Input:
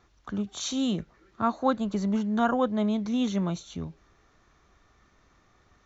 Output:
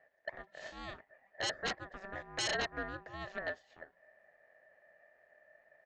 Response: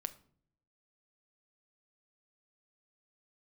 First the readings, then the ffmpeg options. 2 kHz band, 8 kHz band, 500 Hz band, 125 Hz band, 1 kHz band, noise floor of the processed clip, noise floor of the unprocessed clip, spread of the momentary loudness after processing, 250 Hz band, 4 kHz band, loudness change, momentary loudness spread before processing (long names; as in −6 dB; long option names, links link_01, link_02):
+3.0 dB, can't be measured, −12.0 dB, −18.5 dB, −13.5 dB, −72 dBFS, −64 dBFS, 20 LU, −25.5 dB, −2.0 dB, −11.5 dB, 11 LU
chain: -af "aeval=exprs='0.282*(cos(1*acos(clip(val(0)/0.282,-1,1)))-cos(1*PI/2))+0.141*(cos(4*acos(clip(val(0)/0.282,-1,1)))-cos(4*PI/2))':channel_layout=same,bandpass=frequency=1200:width_type=q:width=14:csg=0,aresample=16000,aeval=exprs='0.0531*sin(PI/2*3.55*val(0)/0.0531)':channel_layout=same,aresample=44100,aeval=exprs='val(0)*sin(2*PI*580*n/s)':channel_layout=same,volume=-2.5dB"